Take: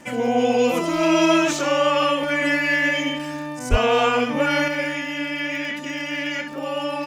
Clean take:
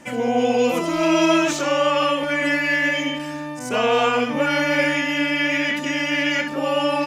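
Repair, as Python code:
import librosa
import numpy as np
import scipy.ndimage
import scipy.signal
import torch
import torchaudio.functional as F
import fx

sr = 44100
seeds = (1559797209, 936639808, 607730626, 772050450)

y = fx.fix_declick_ar(x, sr, threshold=6.5)
y = fx.fix_deplosive(y, sr, at_s=(3.7,))
y = fx.gain(y, sr, db=fx.steps((0.0, 0.0), (4.68, 5.5)))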